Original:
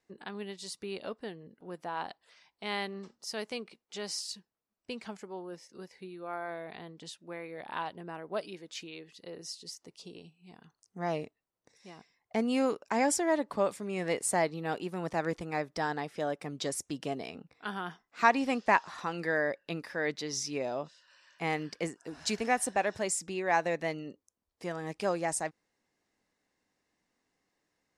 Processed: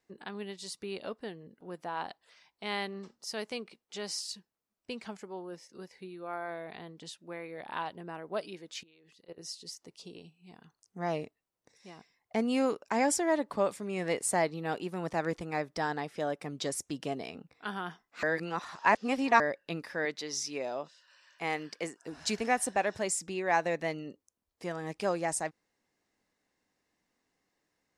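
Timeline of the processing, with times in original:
8.83–9.38 s: level held to a coarse grid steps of 21 dB
18.23–19.40 s: reverse
20.05–22.03 s: high-pass 350 Hz 6 dB/octave

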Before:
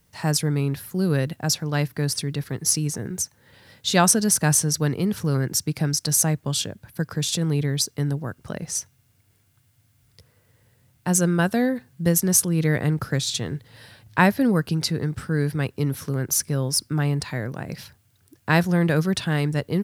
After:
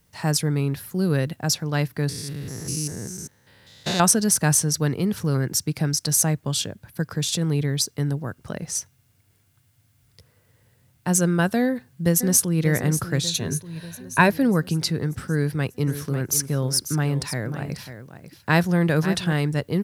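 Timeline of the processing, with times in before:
2.09–4.00 s: spectrogram pixelated in time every 200 ms
11.61–12.62 s: echo throw 590 ms, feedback 60%, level -11 dB
13.27–14.30 s: rippled EQ curve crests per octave 1.5, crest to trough 8 dB
15.33–19.33 s: delay 543 ms -11 dB

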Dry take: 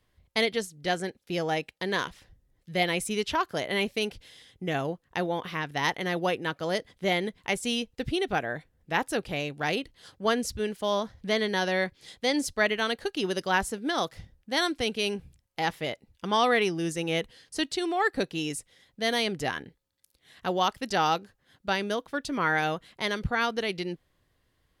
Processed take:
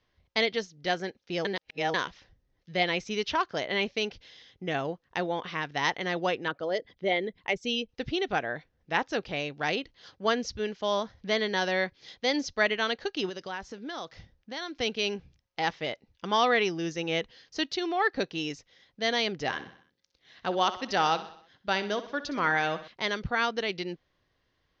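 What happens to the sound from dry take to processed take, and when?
1.45–1.94 s: reverse
6.48–7.89 s: resonances exaggerated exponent 1.5
13.29–14.76 s: compression 3:1, threshold -35 dBFS
19.41–22.88 s: feedback delay 63 ms, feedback 53%, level -14 dB
whole clip: steep low-pass 6.3 kHz 72 dB/octave; bass shelf 230 Hz -6 dB

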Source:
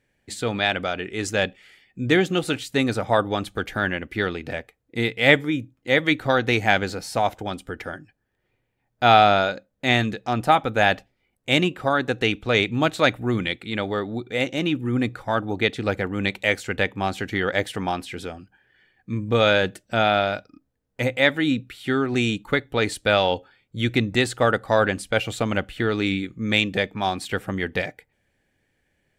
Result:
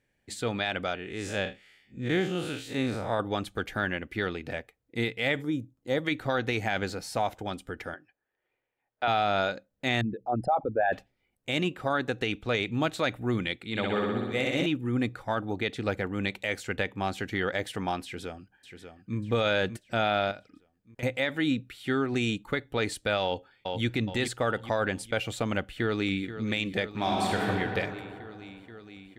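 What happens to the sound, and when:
0.95–3.20 s: spectral blur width 106 ms
5.42–6.05 s: peaking EQ 2.3 kHz -12 dB 1.3 oct
7.94–9.08 s: three-band isolator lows -17 dB, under 350 Hz, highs -24 dB, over 4.1 kHz
10.01–10.93 s: resonances exaggerated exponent 3
13.69–14.66 s: flutter echo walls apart 10.7 m, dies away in 1.3 s
18.04–19.17 s: echo throw 590 ms, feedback 45%, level -9 dB
20.31–21.03 s: compression, threshold -33 dBFS
23.23–23.85 s: echo throw 420 ms, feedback 40%, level -6.5 dB
25.60–26.26 s: echo throw 480 ms, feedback 85%, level -12.5 dB
26.89–27.49 s: reverb throw, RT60 2.6 s, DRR -3 dB
whole clip: peak limiter -11.5 dBFS; trim -5 dB

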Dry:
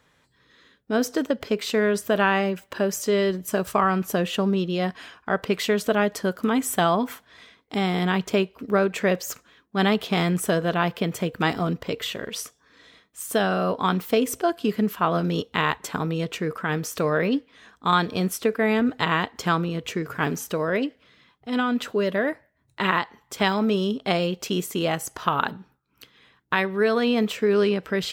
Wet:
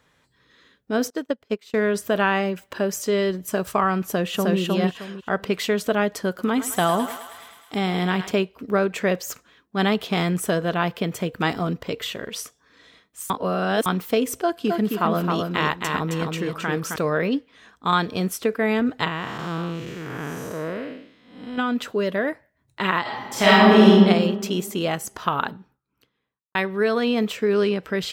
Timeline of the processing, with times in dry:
1.10–1.74 s: upward expansion 2.5:1, over -37 dBFS
4.03–4.58 s: echo throw 310 ms, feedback 25%, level -1.5 dB
6.28–8.31 s: thinning echo 106 ms, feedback 73%, high-pass 600 Hz, level -10 dB
13.30–13.86 s: reverse
14.39–16.96 s: feedback delay 266 ms, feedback 25%, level -4 dB
19.08–21.58 s: spectral blur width 287 ms
23.01–23.94 s: reverb throw, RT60 1.5 s, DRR -10 dB
25.25–26.55 s: studio fade out

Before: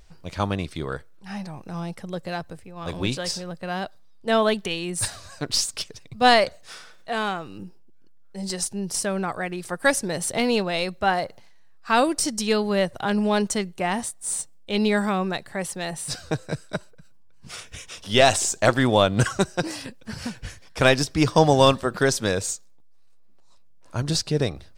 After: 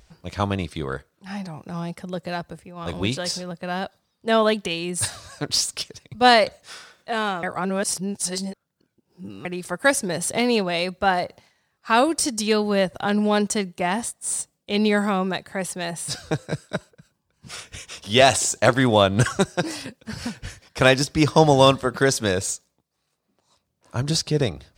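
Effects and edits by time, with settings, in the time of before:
7.43–9.45 s: reverse
whole clip: high-pass 43 Hz; trim +1.5 dB

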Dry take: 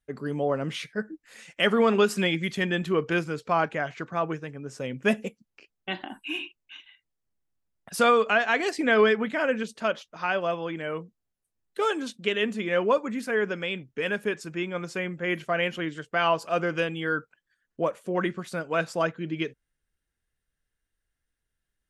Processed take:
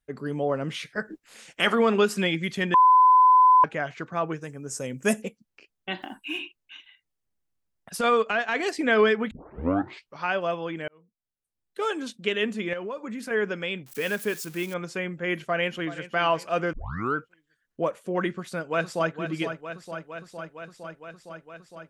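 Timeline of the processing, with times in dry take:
0.85–1.74 s: spectral peaks clipped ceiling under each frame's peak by 14 dB
2.74–3.64 s: bleep 1.01 kHz -12.5 dBFS
4.41–5.22 s: resonant high shelf 5.2 kHz +13 dB, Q 1.5
5.98–6.40 s: block-companded coder 7-bit
7.97–8.57 s: transient shaper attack -11 dB, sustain -6 dB
9.31 s: tape start 0.94 s
10.88–12.14 s: fade in
12.73–13.31 s: compression 5:1, threshold -31 dBFS
13.86–14.74 s: zero-crossing glitches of -31.5 dBFS
15.41–16.05 s: echo throw 380 ms, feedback 40%, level -14 dB
16.73 s: tape start 0.43 s
18.31–19.14 s: echo throw 460 ms, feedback 80%, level -9 dB

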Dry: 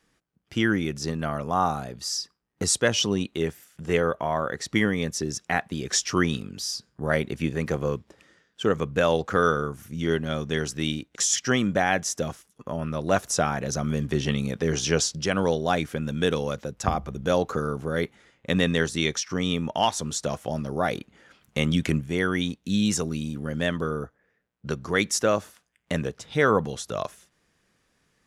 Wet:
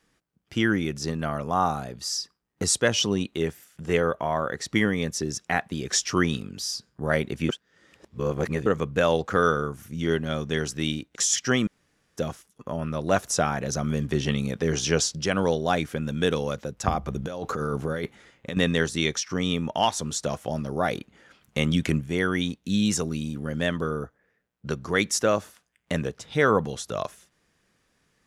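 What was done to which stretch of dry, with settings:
7.49–8.66 s: reverse
11.67–12.17 s: room tone
17.06–18.57 s: compressor with a negative ratio -29 dBFS

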